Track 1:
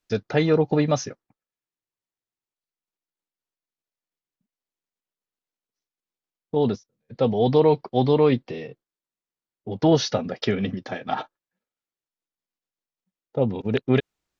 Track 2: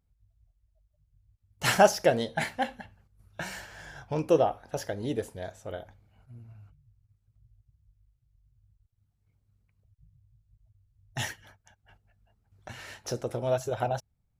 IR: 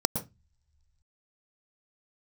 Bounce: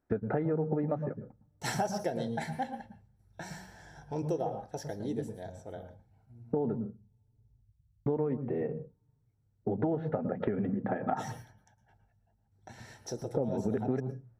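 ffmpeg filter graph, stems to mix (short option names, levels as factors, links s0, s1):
-filter_complex "[0:a]lowpass=f=1600:w=0.5412,lowpass=f=1600:w=1.3066,acompressor=threshold=0.0251:ratio=1.5,volume=1.33,asplit=3[s0][s1][s2];[s0]atrim=end=6.89,asetpts=PTS-STARTPTS,afade=t=out:st=6.886:d=0.004:c=hsin[s3];[s1]atrim=start=6.89:end=8.06,asetpts=PTS-STARTPTS,volume=0[s4];[s2]atrim=start=8.06,asetpts=PTS-STARTPTS,afade=t=in:d=0.004:c=hsin[s5];[s3][s4][s5]concat=n=3:v=0:a=1,asplit=2[s6][s7];[s7]volume=0.15[s8];[1:a]bandreject=f=580:w=12,volume=0.178,asplit=2[s9][s10];[s10]volume=0.668[s11];[2:a]atrim=start_sample=2205[s12];[s8][s11]amix=inputs=2:normalize=0[s13];[s13][s12]afir=irnorm=-1:irlink=0[s14];[s6][s9][s14]amix=inputs=3:normalize=0,acompressor=threshold=0.0398:ratio=6"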